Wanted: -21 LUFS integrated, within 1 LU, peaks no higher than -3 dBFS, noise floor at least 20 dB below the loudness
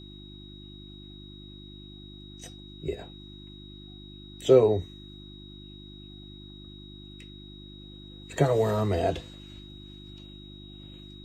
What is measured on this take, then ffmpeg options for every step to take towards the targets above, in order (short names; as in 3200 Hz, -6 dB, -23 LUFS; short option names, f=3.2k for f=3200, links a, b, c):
hum 50 Hz; harmonics up to 350 Hz; hum level -45 dBFS; steady tone 3800 Hz; tone level -49 dBFS; loudness -25.5 LUFS; peak -6.5 dBFS; loudness target -21.0 LUFS
-> -af "bandreject=f=50:t=h:w=4,bandreject=f=100:t=h:w=4,bandreject=f=150:t=h:w=4,bandreject=f=200:t=h:w=4,bandreject=f=250:t=h:w=4,bandreject=f=300:t=h:w=4,bandreject=f=350:t=h:w=4"
-af "bandreject=f=3.8k:w=30"
-af "volume=4.5dB,alimiter=limit=-3dB:level=0:latency=1"